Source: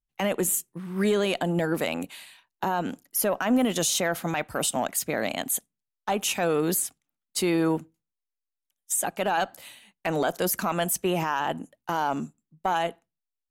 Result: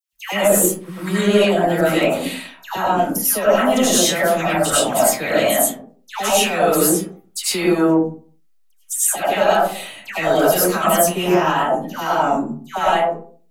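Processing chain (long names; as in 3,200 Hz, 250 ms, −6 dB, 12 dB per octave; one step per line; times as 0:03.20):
downward compressor 1.5 to 1, threshold −39 dBFS, peak gain reduction 7.5 dB
all-pass dispersion lows, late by 131 ms, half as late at 1,400 Hz
convolution reverb RT60 0.45 s, pre-delay 60 ms, DRR −8.5 dB
level +7 dB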